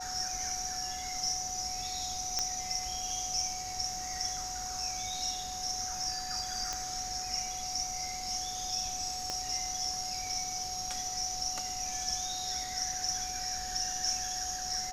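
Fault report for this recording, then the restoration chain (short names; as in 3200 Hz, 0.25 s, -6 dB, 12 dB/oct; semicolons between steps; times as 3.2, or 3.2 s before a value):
tone 740 Hz -40 dBFS
2.39 pop -15 dBFS
6.73 pop -20 dBFS
9.3 pop -20 dBFS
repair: de-click; notch 740 Hz, Q 30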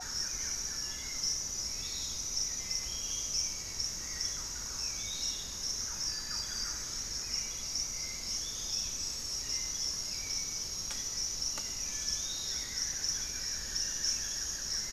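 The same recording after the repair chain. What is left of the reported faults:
9.3 pop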